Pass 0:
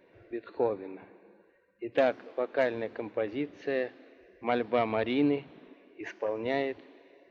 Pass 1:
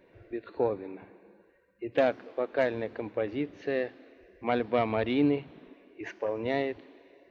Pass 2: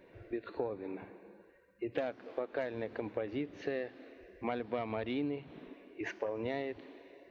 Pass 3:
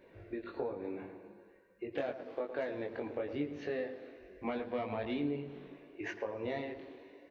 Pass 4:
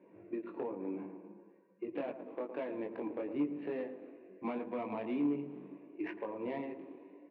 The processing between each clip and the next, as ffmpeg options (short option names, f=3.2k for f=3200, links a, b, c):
-af "lowshelf=f=110:g=10"
-af "acompressor=threshold=-34dB:ratio=6,volume=1dB"
-filter_complex "[0:a]flanger=delay=19.5:depth=2:speed=0.8,asplit=2[a][b];[b]adelay=113,lowpass=f=1.4k:p=1,volume=-9dB,asplit=2[c][d];[d]adelay=113,lowpass=f=1.4k:p=1,volume=0.5,asplit=2[e][f];[f]adelay=113,lowpass=f=1.4k:p=1,volume=0.5,asplit=2[g][h];[h]adelay=113,lowpass=f=1.4k:p=1,volume=0.5,asplit=2[i][j];[j]adelay=113,lowpass=f=1.4k:p=1,volume=0.5,asplit=2[k][l];[l]adelay=113,lowpass=f=1.4k:p=1,volume=0.5[m];[c][e][g][i][k][m]amix=inputs=6:normalize=0[n];[a][n]amix=inputs=2:normalize=0,volume=2dB"
-af "volume=29.5dB,asoftclip=hard,volume=-29.5dB,adynamicsmooth=sensitivity=3.5:basefreq=1.4k,highpass=f=140:w=0.5412,highpass=f=140:w=1.3066,equalizer=f=190:t=q:w=4:g=8,equalizer=f=310:t=q:w=4:g=9,equalizer=f=1k:t=q:w=4:g=8,equalizer=f=1.5k:t=q:w=4:g=-3,equalizer=f=2.5k:t=q:w=4:g=9,lowpass=f=4.3k:w=0.5412,lowpass=f=4.3k:w=1.3066,volume=-3dB"